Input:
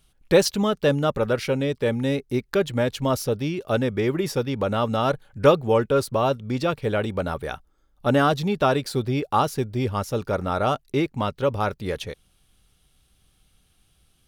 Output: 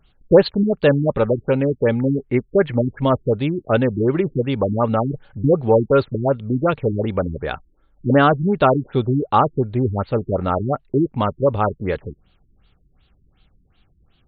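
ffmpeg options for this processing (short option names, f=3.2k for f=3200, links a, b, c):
-filter_complex "[0:a]asettb=1/sr,asplit=3[a][b][c];[a]atrim=end=2.274[d];[b]atrim=start=2.27:end=3.01,asetpts=PTS-STARTPTS,afade=t=in:d=0.004:c=qsin,afade=t=out:st=0.736:d=0.004:c=qsin,highshelf=f=3k:t=q:w=3:g=-12.5[e];[c]atrim=start=3.006[f];[d][e]acrossfade=d=0.004:c1=hsin:c2=qsin[g];[g][f]acrossfade=d=0.004:c1=qsin:c2=hsin,afftfilt=real='re*lt(b*sr/1024,360*pow(4700/360,0.5+0.5*sin(2*PI*2.7*pts/sr)))':imag='im*lt(b*sr/1024,360*pow(4700/360,0.5+0.5*sin(2*PI*2.7*pts/sr)))':win_size=1024:overlap=0.75,volume=5.5dB"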